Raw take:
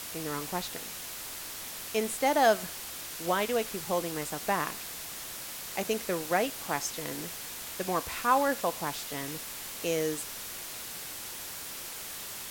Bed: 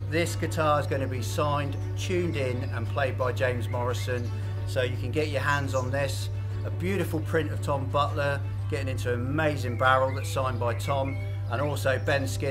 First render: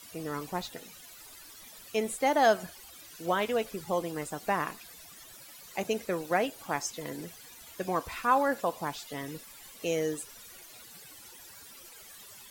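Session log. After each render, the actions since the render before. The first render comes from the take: denoiser 15 dB, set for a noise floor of -41 dBFS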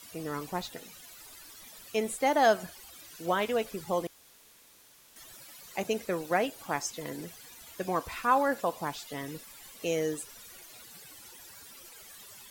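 4.07–5.16 room tone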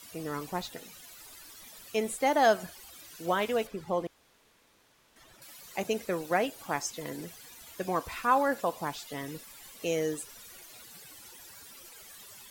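3.67–5.42 LPF 2200 Hz 6 dB/oct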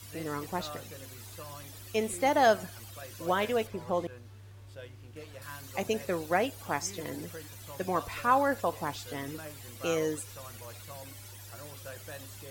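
add bed -19.5 dB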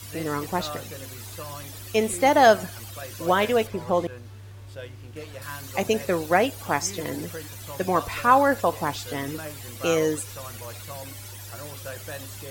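gain +7.5 dB

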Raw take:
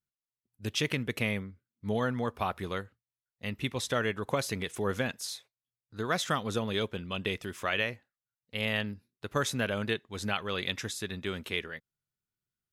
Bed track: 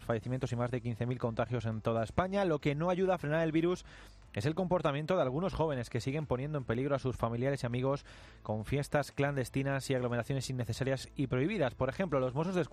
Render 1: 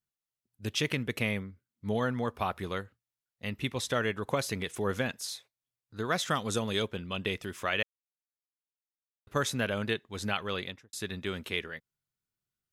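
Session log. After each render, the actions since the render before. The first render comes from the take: 6.35–6.82 bell 7900 Hz +10 dB 1.1 oct; 7.83–9.27 mute; 10.51–10.93 studio fade out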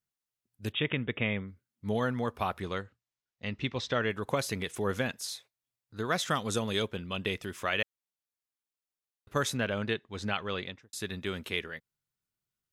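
0.72–1.48 brick-wall FIR low-pass 3800 Hz; 2.59–4.09 LPF 9200 Hz -> 4800 Hz 24 dB/oct; 9.57–10.83 air absorption 70 m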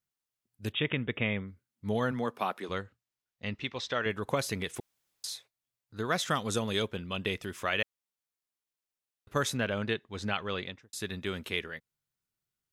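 2.11–2.68 HPF 110 Hz -> 250 Hz 24 dB/oct; 3.55–4.06 low shelf 330 Hz -9.5 dB; 4.8–5.24 room tone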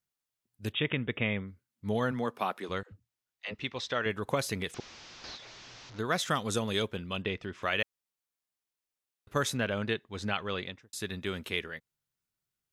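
2.83–3.54 dispersion lows, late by 90 ms, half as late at 380 Hz; 4.74–5.99 delta modulation 32 kbps, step -43 dBFS; 7.22–7.63 air absorption 160 m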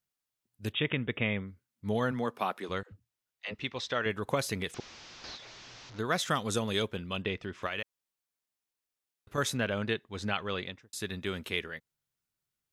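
7.66–9.38 compressor, threshold -30 dBFS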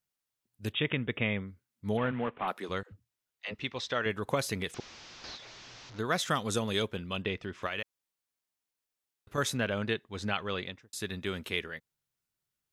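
1.97–2.48 CVSD 16 kbps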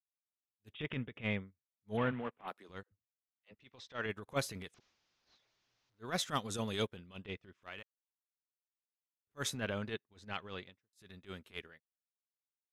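transient shaper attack -12 dB, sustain +3 dB; upward expander 2.5:1, over -49 dBFS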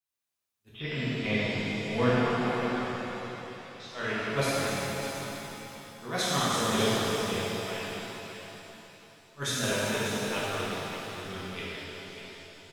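echo 0.593 s -10 dB; shimmer reverb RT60 3.2 s, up +7 st, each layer -8 dB, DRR -10 dB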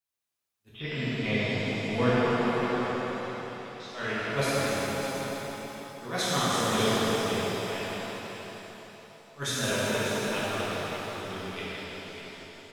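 tape echo 0.163 s, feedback 74%, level -5 dB, low-pass 2400 Hz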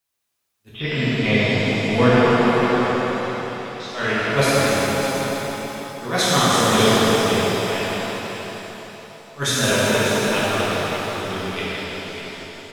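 gain +10 dB; limiter -3 dBFS, peak gain reduction 2 dB

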